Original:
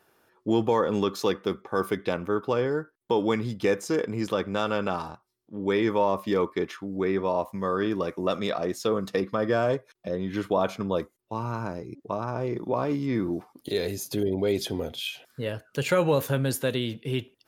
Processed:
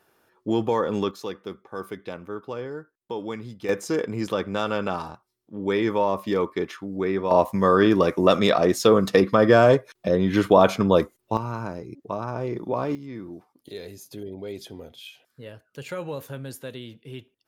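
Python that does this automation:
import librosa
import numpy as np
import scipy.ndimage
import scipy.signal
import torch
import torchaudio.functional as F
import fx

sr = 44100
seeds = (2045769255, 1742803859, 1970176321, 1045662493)

y = fx.gain(x, sr, db=fx.steps((0.0, 0.0), (1.11, -7.5), (3.69, 1.0), (7.31, 9.0), (11.37, 0.5), (12.95, -10.0)))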